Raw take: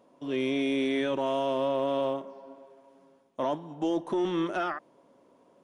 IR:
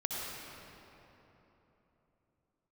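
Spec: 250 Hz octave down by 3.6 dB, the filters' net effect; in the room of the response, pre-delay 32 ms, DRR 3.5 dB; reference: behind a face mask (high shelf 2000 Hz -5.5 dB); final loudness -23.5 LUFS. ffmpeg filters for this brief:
-filter_complex "[0:a]equalizer=f=250:t=o:g=-4.5,asplit=2[a][b];[1:a]atrim=start_sample=2205,adelay=32[c];[b][c]afir=irnorm=-1:irlink=0,volume=-8dB[d];[a][d]amix=inputs=2:normalize=0,highshelf=f=2k:g=-5.5,volume=7.5dB"

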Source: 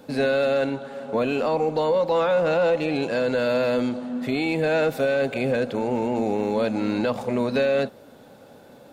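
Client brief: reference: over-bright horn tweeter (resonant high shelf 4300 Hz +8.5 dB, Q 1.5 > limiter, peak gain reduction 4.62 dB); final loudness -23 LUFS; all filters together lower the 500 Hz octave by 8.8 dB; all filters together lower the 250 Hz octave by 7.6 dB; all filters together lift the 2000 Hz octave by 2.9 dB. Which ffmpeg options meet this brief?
-af "equalizer=f=250:t=o:g=-6.5,equalizer=f=500:t=o:g=-9,equalizer=f=2k:t=o:g=7,highshelf=f=4.3k:t=q:w=1.5:g=8.5,volume=6.5dB,alimiter=limit=-11dB:level=0:latency=1"

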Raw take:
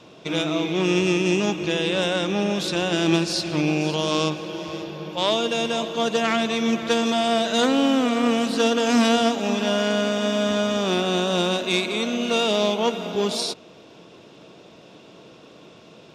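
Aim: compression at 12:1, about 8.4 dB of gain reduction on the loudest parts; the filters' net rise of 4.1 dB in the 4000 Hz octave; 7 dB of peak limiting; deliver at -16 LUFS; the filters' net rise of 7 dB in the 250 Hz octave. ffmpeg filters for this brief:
-af "equalizer=f=250:t=o:g=8.5,equalizer=f=4k:t=o:g=5,acompressor=threshold=-16dB:ratio=12,volume=6dB,alimiter=limit=-6.5dB:level=0:latency=1"

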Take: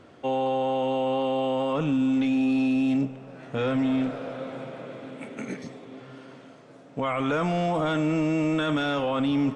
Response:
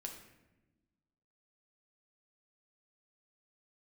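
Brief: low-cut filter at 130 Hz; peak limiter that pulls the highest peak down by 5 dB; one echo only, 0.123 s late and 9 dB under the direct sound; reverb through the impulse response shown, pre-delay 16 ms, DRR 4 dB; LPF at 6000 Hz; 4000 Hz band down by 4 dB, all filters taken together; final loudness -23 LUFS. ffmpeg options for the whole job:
-filter_complex "[0:a]highpass=130,lowpass=6k,equalizer=f=4k:t=o:g=-5,alimiter=limit=-21.5dB:level=0:latency=1,aecho=1:1:123:0.355,asplit=2[a][b];[1:a]atrim=start_sample=2205,adelay=16[c];[b][c]afir=irnorm=-1:irlink=0,volume=-1dB[d];[a][d]amix=inputs=2:normalize=0,volume=5dB"

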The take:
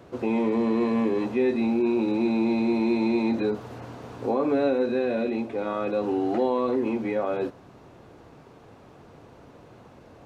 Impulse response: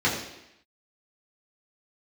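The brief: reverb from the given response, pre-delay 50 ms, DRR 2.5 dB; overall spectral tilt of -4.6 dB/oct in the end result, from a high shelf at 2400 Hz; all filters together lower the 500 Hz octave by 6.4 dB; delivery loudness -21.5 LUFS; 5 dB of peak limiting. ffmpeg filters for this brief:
-filter_complex "[0:a]equalizer=f=500:t=o:g=-8.5,highshelf=f=2.4k:g=-4,alimiter=limit=-22dB:level=0:latency=1,asplit=2[a][b];[1:a]atrim=start_sample=2205,adelay=50[c];[b][c]afir=irnorm=-1:irlink=0,volume=-17.5dB[d];[a][d]amix=inputs=2:normalize=0,volume=7dB"

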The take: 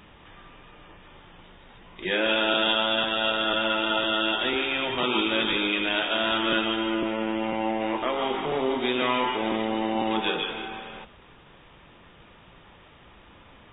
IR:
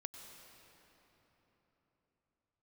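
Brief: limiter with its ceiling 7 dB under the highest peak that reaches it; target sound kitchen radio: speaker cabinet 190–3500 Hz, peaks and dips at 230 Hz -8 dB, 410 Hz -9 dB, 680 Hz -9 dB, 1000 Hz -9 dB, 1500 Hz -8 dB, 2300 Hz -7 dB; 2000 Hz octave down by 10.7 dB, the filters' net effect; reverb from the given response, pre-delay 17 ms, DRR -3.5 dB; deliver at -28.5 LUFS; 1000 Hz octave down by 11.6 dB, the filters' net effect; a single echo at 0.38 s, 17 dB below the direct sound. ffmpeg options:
-filter_complex "[0:a]equalizer=f=1k:t=o:g=-3.5,equalizer=f=2k:t=o:g=-6.5,alimiter=limit=-19.5dB:level=0:latency=1,aecho=1:1:380:0.141,asplit=2[a][b];[1:a]atrim=start_sample=2205,adelay=17[c];[b][c]afir=irnorm=-1:irlink=0,volume=7dB[d];[a][d]amix=inputs=2:normalize=0,highpass=190,equalizer=f=230:t=q:w=4:g=-8,equalizer=f=410:t=q:w=4:g=-9,equalizer=f=680:t=q:w=4:g=-9,equalizer=f=1k:t=q:w=4:g=-9,equalizer=f=1.5k:t=q:w=4:g=-8,equalizer=f=2.3k:t=q:w=4:g=-7,lowpass=f=3.5k:w=0.5412,lowpass=f=3.5k:w=1.3066,volume=1.5dB"

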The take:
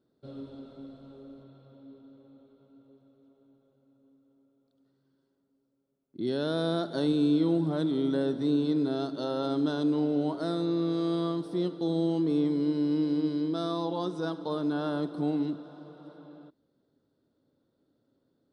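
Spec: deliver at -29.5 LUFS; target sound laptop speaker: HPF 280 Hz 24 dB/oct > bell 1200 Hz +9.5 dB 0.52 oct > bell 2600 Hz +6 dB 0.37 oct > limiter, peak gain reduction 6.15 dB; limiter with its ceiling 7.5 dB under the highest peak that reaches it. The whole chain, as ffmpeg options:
-af "alimiter=limit=-24dB:level=0:latency=1,highpass=f=280:w=0.5412,highpass=f=280:w=1.3066,equalizer=f=1.2k:t=o:w=0.52:g=9.5,equalizer=f=2.6k:t=o:w=0.37:g=6,volume=5dB,alimiter=limit=-21.5dB:level=0:latency=1"

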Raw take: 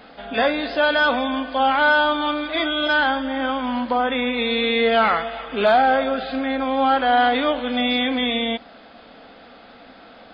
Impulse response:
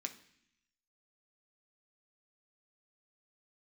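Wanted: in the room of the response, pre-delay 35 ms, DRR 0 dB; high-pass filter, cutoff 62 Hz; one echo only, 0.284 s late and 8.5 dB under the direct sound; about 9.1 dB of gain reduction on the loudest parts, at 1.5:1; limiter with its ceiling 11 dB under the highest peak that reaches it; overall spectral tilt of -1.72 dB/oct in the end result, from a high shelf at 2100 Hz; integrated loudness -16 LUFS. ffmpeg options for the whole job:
-filter_complex "[0:a]highpass=62,highshelf=f=2.1k:g=-9,acompressor=threshold=-40dB:ratio=1.5,alimiter=level_in=4dB:limit=-24dB:level=0:latency=1,volume=-4dB,aecho=1:1:284:0.376,asplit=2[a][b];[1:a]atrim=start_sample=2205,adelay=35[c];[b][c]afir=irnorm=-1:irlink=0,volume=1.5dB[d];[a][d]amix=inputs=2:normalize=0,volume=17dB"

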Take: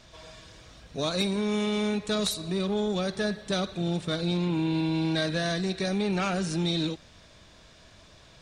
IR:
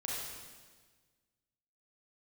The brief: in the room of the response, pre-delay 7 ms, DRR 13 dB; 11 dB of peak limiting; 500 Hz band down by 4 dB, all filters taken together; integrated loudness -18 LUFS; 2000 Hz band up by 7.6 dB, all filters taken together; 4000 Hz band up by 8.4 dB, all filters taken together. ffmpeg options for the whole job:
-filter_complex "[0:a]equalizer=f=500:t=o:g=-6,equalizer=f=2k:t=o:g=8.5,equalizer=f=4k:t=o:g=7,alimiter=limit=-20.5dB:level=0:latency=1,asplit=2[a][b];[1:a]atrim=start_sample=2205,adelay=7[c];[b][c]afir=irnorm=-1:irlink=0,volume=-15.5dB[d];[a][d]amix=inputs=2:normalize=0,volume=11dB"

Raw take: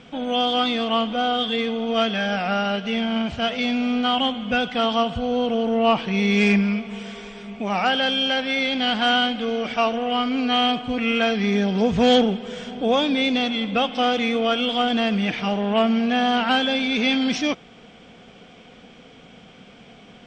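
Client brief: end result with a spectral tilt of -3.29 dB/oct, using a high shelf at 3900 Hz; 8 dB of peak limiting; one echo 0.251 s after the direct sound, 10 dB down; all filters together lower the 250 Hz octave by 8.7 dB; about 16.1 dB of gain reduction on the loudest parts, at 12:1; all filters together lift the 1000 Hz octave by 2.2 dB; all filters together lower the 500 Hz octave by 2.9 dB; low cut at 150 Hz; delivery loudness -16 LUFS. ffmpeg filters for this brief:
-af "highpass=150,equalizer=f=250:t=o:g=-8.5,equalizer=f=500:t=o:g=-4,equalizer=f=1k:t=o:g=6,highshelf=f=3.9k:g=4,acompressor=threshold=-30dB:ratio=12,alimiter=level_in=1.5dB:limit=-24dB:level=0:latency=1,volume=-1.5dB,aecho=1:1:251:0.316,volume=18dB"

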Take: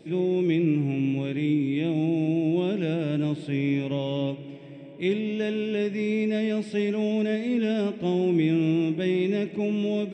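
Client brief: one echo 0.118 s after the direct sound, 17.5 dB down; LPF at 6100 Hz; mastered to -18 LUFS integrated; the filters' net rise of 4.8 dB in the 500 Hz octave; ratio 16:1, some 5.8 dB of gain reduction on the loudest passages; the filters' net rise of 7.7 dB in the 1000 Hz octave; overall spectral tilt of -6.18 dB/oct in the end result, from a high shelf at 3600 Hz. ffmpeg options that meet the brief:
-af "lowpass=6.1k,equalizer=f=500:t=o:g=5,equalizer=f=1k:t=o:g=8,highshelf=f=3.6k:g=6.5,acompressor=threshold=-22dB:ratio=16,aecho=1:1:118:0.133,volume=9dB"

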